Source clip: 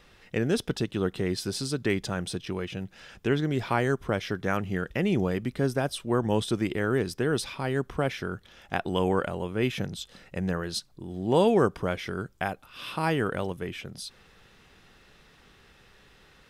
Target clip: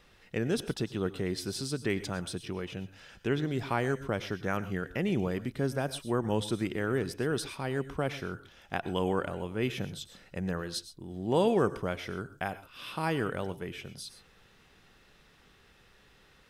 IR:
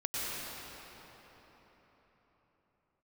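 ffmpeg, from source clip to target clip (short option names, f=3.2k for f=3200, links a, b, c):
-filter_complex "[0:a]asplit=2[a][b];[b]highshelf=f=9.2k:g=10[c];[1:a]atrim=start_sample=2205,atrim=end_sample=6174[d];[c][d]afir=irnorm=-1:irlink=0,volume=-11dB[e];[a][e]amix=inputs=2:normalize=0,volume=-6dB"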